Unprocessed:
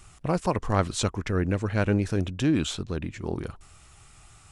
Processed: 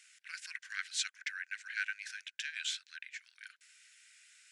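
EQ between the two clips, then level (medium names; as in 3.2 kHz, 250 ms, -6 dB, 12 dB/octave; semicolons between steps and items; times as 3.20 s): rippled Chebyshev high-pass 1.5 kHz, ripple 3 dB; low-pass 3.8 kHz 6 dB/octave; +1.5 dB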